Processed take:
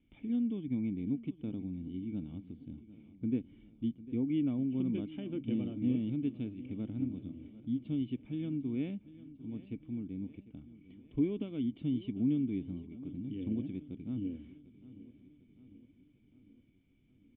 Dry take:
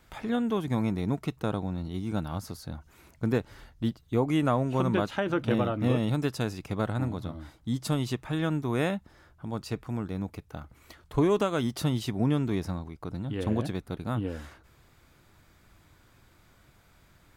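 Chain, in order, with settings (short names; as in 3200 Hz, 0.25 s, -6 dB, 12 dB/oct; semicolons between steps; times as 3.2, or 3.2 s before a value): vocal tract filter i; feedback echo 0.749 s, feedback 56%, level -17 dB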